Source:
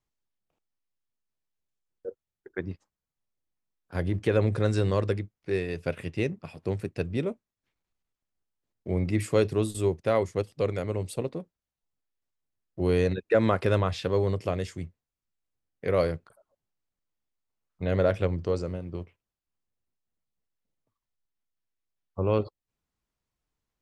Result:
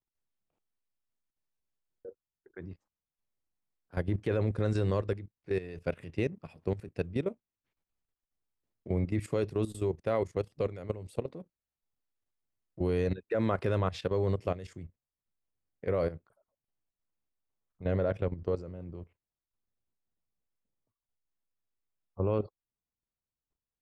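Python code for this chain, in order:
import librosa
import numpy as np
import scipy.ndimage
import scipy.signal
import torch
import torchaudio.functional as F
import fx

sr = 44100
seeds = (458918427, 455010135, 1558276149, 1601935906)

y = fx.high_shelf(x, sr, hz=2500.0, db=fx.steps((0.0, -5.5), (14.75, -11.5)))
y = fx.level_steps(y, sr, step_db=14)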